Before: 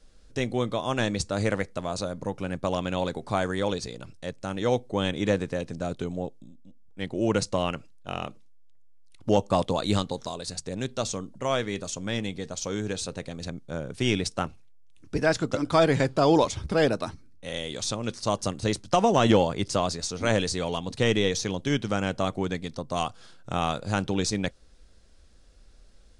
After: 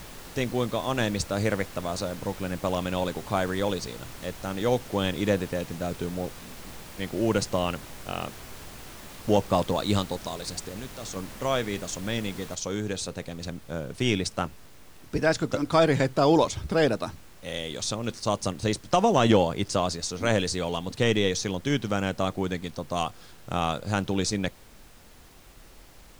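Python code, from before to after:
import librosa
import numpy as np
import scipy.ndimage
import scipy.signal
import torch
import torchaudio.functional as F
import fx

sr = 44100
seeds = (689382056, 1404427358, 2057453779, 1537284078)

y = fx.level_steps(x, sr, step_db=19, at=(10.67, 11.15), fade=0.02)
y = fx.noise_floor_step(y, sr, seeds[0], at_s=12.55, before_db=-43, after_db=-53, tilt_db=3.0)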